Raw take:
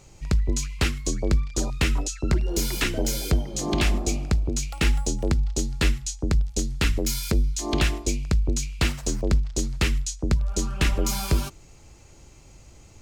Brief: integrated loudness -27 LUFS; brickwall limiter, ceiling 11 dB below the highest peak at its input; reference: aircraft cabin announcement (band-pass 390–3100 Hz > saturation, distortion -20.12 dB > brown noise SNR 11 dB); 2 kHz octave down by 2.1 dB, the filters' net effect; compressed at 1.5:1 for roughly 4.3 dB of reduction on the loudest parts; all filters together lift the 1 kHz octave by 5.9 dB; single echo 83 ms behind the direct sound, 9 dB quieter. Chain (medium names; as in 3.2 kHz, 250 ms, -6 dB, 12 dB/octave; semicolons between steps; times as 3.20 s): peaking EQ 1 kHz +9 dB; peaking EQ 2 kHz -4 dB; compression 1.5:1, threshold -28 dBFS; peak limiter -22 dBFS; band-pass 390–3100 Hz; delay 83 ms -9 dB; saturation -26 dBFS; brown noise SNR 11 dB; trim +13 dB